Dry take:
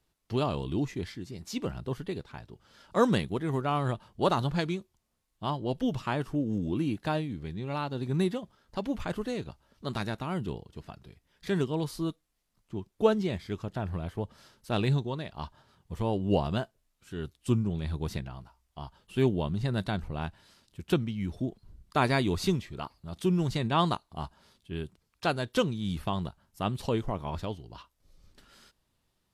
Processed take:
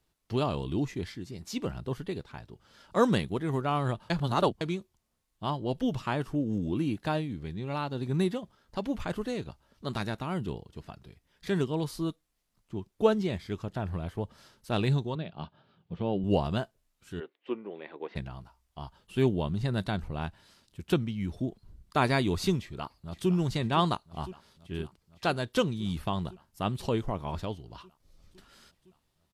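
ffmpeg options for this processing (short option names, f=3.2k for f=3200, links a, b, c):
-filter_complex "[0:a]asettb=1/sr,asplit=3[a][b][c];[a]atrim=end=15.154[d];[b]atrim=start=15.15:end=16.24,asetpts=PTS-STARTPTS,afade=t=in:d=0.004:c=qsin,afade=t=out:st=1.086:d=0.004:c=qsin,highpass=130,equalizer=f=170:t=q:w=4:g=7,equalizer=f=1k:t=q:w=4:g=-8,equalizer=f=1.9k:t=q:w=4:g=-7,lowpass=f=3.7k:w=0.5412,lowpass=f=3.7k:w=1.3066[e];[c]atrim=start=16.236[f];[d][e]acrossfade=d=0.004:c1=hsin:c2=qsin[g];[g][f]acrossfade=d=0.004:c1=qsin:c2=hsin,asplit=3[h][i][j];[h]afade=t=out:st=17.19:d=0.02[k];[i]highpass=f=340:w=0.5412,highpass=f=340:w=1.3066,equalizer=f=490:t=q:w=4:g=4,equalizer=f=1.3k:t=q:w=4:g=-4,equalizer=f=2k:t=q:w=4:g=4,lowpass=f=2.7k:w=0.5412,lowpass=f=2.7k:w=1.3066,afade=t=in:st=17.19:d=0.02,afade=t=out:st=18.15:d=0.02[l];[j]afade=t=in:st=18.15:d=0.02[m];[k][l][m]amix=inputs=3:normalize=0,asplit=2[n][o];[o]afade=t=in:st=22.59:d=0.01,afade=t=out:st=23.3:d=0.01,aecho=0:1:510|1020|1530|2040|2550|3060|3570|4080|4590|5100|5610|6120:0.199526|0.159621|0.127697|0.102157|0.0817259|0.0653808|0.0523046|0.0418437|0.0334749|0.02678|0.021424|0.0171392[p];[n][p]amix=inputs=2:normalize=0,asplit=3[q][r][s];[q]atrim=end=4.102[t];[r]atrim=start=4.098:end=4.612,asetpts=PTS-STARTPTS,areverse[u];[s]atrim=start=4.608[v];[t][u]acrossfade=d=0.004:c1=hsin:c2=hsin[w];[w][v]acrossfade=d=0.004:c1=hsin:c2=hsin"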